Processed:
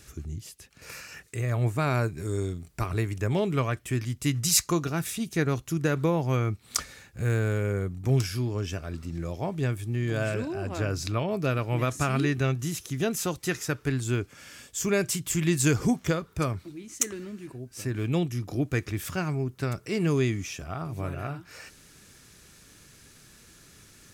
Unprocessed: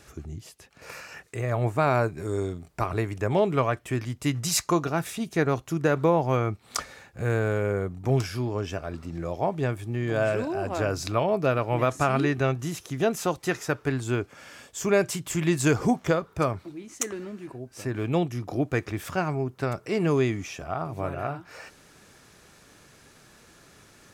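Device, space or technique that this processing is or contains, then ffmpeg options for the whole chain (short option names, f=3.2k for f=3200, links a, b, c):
smiley-face EQ: -filter_complex "[0:a]asettb=1/sr,asplit=3[a][b][c];[a]atrim=end=10.344[d];[b]atrim=start=10.34:end=11.31,asetpts=PTS-STARTPTS,afade=t=in:d=0.004:c=qsin,afade=t=out:st=0.966:d=0.004:c=qsin,highshelf=f=5.6k:g=-7[e];[c]atrim=start=11.306[f];[d][e]acrossfade=d=0.004:c1=hsin:c2=qsin[g];[g][f]acrossfade=d=0.004:c1=qsin:c2=hsin,lowshelf=f=88:g=5.5,equalizer=f=750:t=o:w=1.6:g=-8.5,highshelf=f=5.6k:g=6"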